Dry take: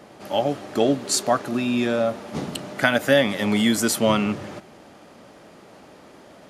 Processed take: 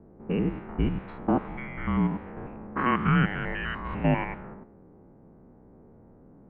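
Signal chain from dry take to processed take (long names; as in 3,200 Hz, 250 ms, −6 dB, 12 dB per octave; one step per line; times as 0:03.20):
spectrum averaged block by block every 100 ms
single-sideband voice off tune −390 Hz 460–2,700 Hz
low-pass that shuts in the quiet parts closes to 450 Hz, open at −22.5 dBFS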